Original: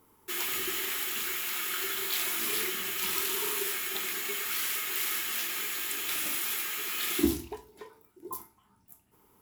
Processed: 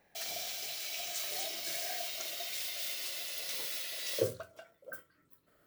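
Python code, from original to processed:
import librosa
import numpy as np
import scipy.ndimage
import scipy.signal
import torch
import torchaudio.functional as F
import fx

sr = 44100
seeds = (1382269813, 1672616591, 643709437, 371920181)

y = fx.speed_glide(x, sr, from_pct=188, to_pct=144)
y = y * librosa.db_to_amplitude(-4.5)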